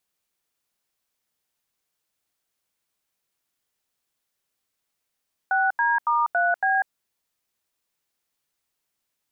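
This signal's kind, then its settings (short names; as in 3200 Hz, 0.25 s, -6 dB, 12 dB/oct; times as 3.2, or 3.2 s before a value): DTMF "6D*3B", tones 0.195 s, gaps 84 ms, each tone -21 dBFS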